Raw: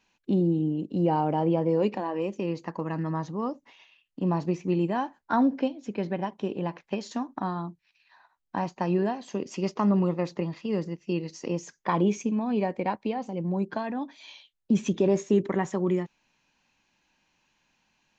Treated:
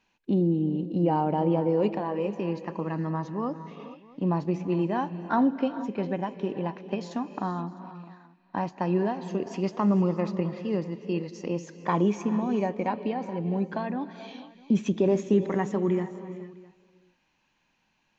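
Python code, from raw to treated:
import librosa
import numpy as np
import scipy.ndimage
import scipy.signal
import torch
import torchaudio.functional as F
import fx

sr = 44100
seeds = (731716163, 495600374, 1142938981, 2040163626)

y = fx.high_shelf(x, sr, hz=6300.0, db=-11.0)
y = y + 10.0 ** (-23.0 / 20.0) * np.pad(y, (int(656 * sr / 1000.0), 0))[:len(y)]
y = fx.rev_gated(y, sr, seeds[0], gate_ms=490, shape='rising', drr_db=11.5)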